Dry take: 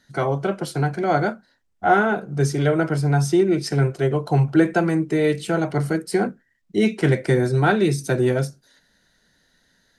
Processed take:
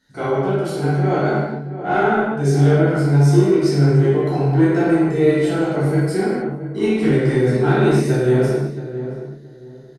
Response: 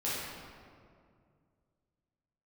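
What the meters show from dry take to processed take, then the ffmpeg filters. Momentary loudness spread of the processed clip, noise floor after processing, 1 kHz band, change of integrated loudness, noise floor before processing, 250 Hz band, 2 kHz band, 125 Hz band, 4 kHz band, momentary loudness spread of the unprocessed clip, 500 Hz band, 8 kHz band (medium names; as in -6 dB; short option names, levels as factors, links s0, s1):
11 LU, -40 dBFS, +0.5 dB, +3.5 dB, -66 dBFS, +4.0 dB, 0.0 dB, +5.0 dB, 0.0 dB, 6 LU, +4.0 dB, -1.0 dB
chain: -filter_complex "[0:a]equalizer=f=310:t=o:w=0.68:g=3,acontrast=57,asplit=2[s0][s1];[s1]adelay=673,lowpass=f=1100:p=1,volume=0.299,asplit=2[s2][s3];[s3]adelay=673,lowpass=f=1100:p=1,volume=0.25,asplit=2[s4][s5];[s5]adelay=673,lowpass=f=1100:p=1,volume=0.25[s6];[s0][s2][s4][s6]amix=inputs=4:normalize=0[s7];[1:a]atrim=start_sample=2205,afade=t=out:st=0.36:d=0.01,atrim=end_sample=16317[s8];[s7][s8]afir=irnorm=-1:irlink=0,volume=0.299"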